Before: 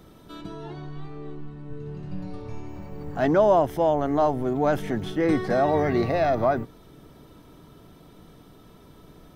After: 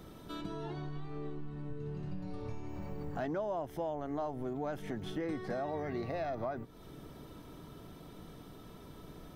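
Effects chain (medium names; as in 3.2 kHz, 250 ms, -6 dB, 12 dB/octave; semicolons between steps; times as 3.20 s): compression 4:1, threshold -36 dBFS, peak gain reduction 17.5 dB; trim -1 dB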